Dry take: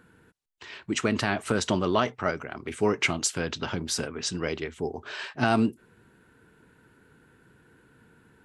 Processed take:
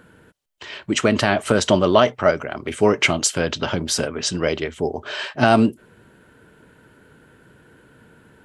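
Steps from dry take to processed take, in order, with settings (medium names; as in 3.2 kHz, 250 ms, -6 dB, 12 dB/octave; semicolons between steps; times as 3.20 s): small resonant body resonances 590/3100 Hz, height 8 dB, ringing for 25 ms; trim +7 dB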